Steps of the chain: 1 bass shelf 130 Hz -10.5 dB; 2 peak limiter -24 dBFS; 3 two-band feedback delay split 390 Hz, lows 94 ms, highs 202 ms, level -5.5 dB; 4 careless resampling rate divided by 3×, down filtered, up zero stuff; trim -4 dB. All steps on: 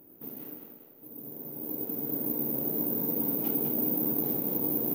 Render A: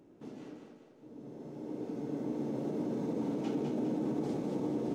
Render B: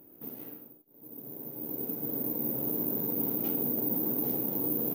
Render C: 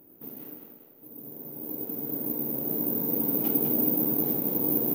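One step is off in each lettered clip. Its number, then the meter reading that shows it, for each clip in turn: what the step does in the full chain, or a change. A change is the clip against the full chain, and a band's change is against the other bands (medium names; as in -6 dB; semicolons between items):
4, crest factor change -5.0 dB; 3, momentary loudness spread change -1 LU; 2, crest factor change +3.0 dB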